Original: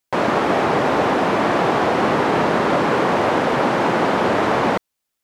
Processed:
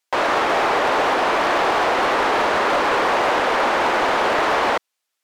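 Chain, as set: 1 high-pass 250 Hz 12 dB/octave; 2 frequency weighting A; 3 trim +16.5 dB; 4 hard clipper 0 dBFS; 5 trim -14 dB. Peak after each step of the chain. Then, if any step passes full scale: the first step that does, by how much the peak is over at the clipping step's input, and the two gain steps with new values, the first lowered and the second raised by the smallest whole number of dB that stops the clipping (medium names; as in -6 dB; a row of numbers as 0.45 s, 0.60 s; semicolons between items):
-5.5 dBFS, -7.0 dBFS, +9.5 dBFS, 0.0 dBFS, -14.0 dBFS; step 3, 9.5 dB; step 3 +6.5 dB, step 5 -4 dB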